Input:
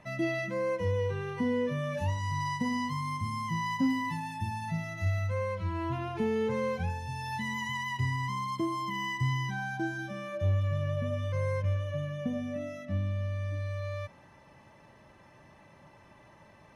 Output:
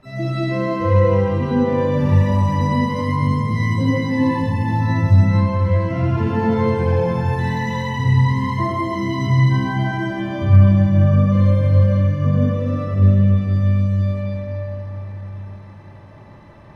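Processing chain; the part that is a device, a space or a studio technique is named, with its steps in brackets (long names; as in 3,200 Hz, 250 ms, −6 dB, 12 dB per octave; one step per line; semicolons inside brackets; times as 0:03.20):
spectral tilt −2 dB per octave
shimmer-style reverb (pitch-shifted copies added +12 semitones −10 dB; convolution reverb RT60 4.1 s, pre-delay 49 ms, DRR −9 dB)
level −1 dB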